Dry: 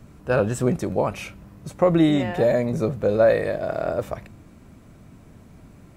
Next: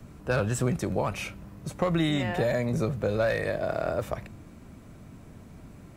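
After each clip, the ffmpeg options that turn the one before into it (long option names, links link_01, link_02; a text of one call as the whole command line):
ffmpeg -i in.wav -filter_complex "[0:a]acrossover=split=150|1000|2900[link_01][link_02][link_03][link_04];[link_02]acompressor=threshold=-27dB:ratio=6[link_05];[link_03]asoftclip=type=hard:threshold=-28.5dB[link_06];[link_01][link_05][link_06][link_04]amix=inputs=4:normalize=0" out.wav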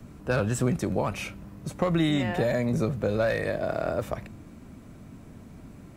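ffmpeg -i in.wav -af "equalizer=frequency=250:width=1.7:gain=3.5" out.wav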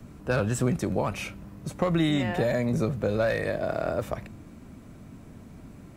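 ffmpeg -i in.wav -af anull out.wav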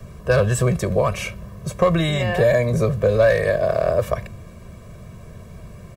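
ffmpeg -i in.wav -af "aecho=1:1:1.8:0.96,volume=5dB" out.wav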